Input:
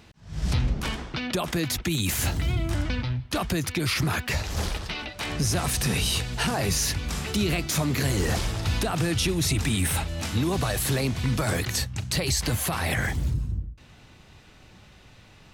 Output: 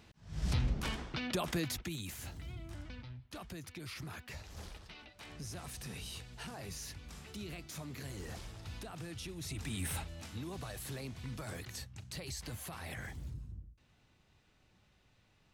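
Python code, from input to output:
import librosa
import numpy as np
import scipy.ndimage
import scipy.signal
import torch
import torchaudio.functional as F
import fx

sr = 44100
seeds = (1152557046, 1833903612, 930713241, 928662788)

y = fx.gain(x, sr, db=fx.line((1.57, -8.0), (2.18, -20.0), (9.34, -20.0), (9.92, -12.0), (10.28, -18.0)))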